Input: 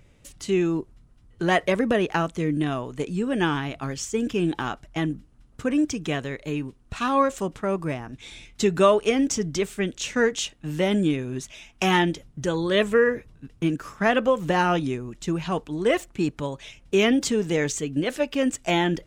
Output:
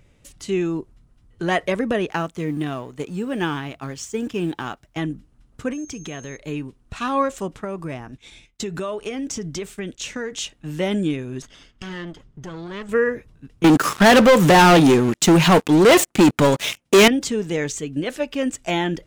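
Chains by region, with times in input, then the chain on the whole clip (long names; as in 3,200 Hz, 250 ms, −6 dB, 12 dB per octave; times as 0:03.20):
0:02.10–0:04.97: mu-law and A-law mismatch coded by A + high-pass filter 51 Hz
0:05.72–0:06.36: downward compressor 3 to 1, threshold −30 dBFS + steady tone 6,400 Hz −43 dBFS
0:07.64–0:10.40: downward expander −40 dBFS + downward compressor, threshold −24 dBFS
0:11.42–0:12.89: lower of the sound and its delayed copy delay 0.62 ms + high-frequency loss of the air 75 metres + downward compressor 2 to 1, threshold −37 dBFS
0:13.64–0:17.08: high-pass filter 140 Hz + high-shelf EQ 8,900 Hz +7 dB + leveller curve on the samples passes 5
whole clip: no processing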